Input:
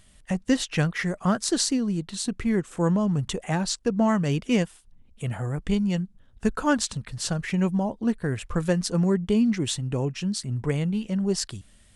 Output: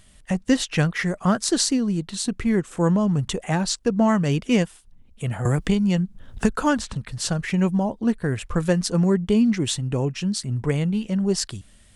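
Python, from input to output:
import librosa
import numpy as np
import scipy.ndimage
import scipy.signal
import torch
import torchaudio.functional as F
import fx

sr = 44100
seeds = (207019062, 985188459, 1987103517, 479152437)

y = fx.band_squash(x, sr, depth_pct=100, at=(5.45, 6.96))
y = F.gain(torch.from_numpy(y), 3.0).numpy()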